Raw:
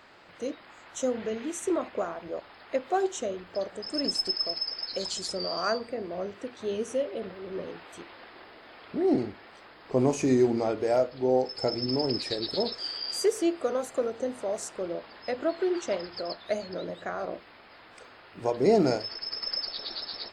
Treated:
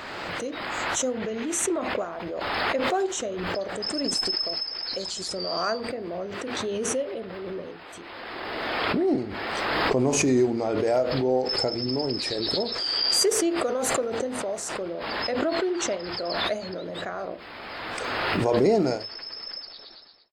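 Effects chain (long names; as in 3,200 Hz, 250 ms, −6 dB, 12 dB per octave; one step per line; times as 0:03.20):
fade-out on the ending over 1.49 s
background raised ahead of every attack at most 20 dB per second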